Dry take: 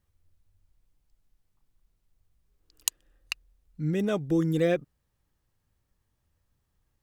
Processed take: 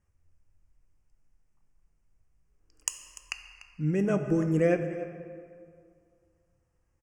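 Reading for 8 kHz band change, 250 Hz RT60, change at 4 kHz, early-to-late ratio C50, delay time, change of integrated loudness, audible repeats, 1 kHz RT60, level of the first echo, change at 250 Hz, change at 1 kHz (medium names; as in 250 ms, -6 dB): -1.5 dB, 2.2 s, -6.5 dB, 8.5 dB, 294 ms, -0.5 dB, 1, 2.3 s, -16.5 dB, 0.0 dB, +0.5 dB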